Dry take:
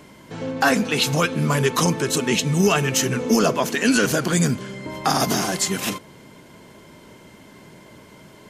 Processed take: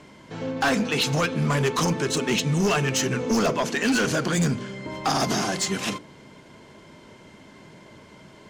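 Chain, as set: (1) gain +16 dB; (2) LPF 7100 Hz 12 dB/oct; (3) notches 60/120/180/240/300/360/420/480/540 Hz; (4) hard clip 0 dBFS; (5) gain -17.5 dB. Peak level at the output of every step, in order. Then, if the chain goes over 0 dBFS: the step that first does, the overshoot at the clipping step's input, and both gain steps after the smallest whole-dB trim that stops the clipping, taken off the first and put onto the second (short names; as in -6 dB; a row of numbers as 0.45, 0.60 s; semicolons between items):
+8.5, +8.5, +9.0, 0.0, -17.5 dBFS; step 1, 9.0 dB; step 1 +7 dB, step 5 -8.5 dB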